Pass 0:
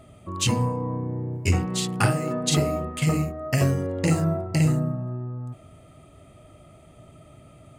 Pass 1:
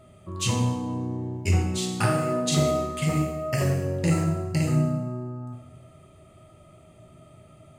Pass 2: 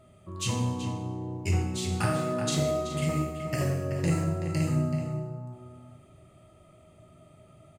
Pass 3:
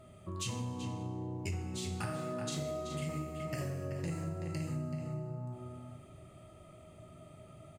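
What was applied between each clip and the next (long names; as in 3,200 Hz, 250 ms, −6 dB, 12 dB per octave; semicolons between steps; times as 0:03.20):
coupled-rooms reverb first 0.9 s, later 2.3 s, from −24 dB, DRR 1.5 dB; level −4.5 dB
slap from a distant wall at 65 metres, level −7 dB; level −4.5 dB
downward compressor 4 to 1, threshold −38 dBFS, peak gain reduction 14.5 dB; level +1 dB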